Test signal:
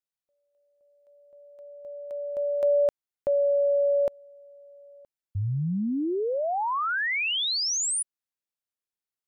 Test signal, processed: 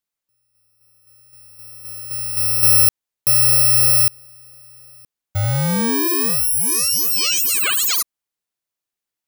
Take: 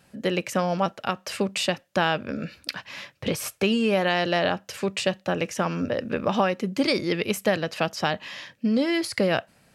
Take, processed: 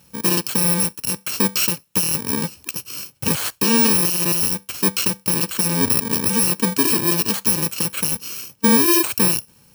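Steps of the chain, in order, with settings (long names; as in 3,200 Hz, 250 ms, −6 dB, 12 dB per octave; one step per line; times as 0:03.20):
samples in bit-reversed order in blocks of 64 samples
in parallel at −7.5 dB: dead-zone distortion −38 dBFS
on the sum: brickwall limiter −14.5 dBFS
level +6.5 dB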